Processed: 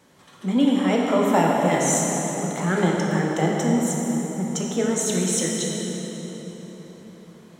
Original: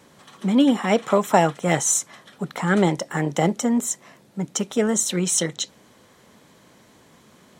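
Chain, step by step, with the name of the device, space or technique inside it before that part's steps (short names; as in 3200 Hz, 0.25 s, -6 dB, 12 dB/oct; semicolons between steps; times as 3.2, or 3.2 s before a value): cathedral (reverb RT60 4.5 s, pre-delay 9 ms, DRR -2.5 dB); gain -5 dB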